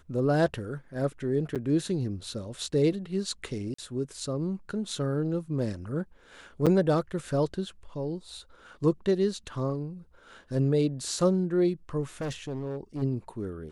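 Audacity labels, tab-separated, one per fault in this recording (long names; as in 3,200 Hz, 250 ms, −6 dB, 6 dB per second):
1.550000	1.560000	drop-out 7.4 ms
3.740000	3.780000	drop-out 44 ms
6.660000	6.670000	drop-out 6.7 ms
12.210000	13.030000	clipping −29.5 dBFS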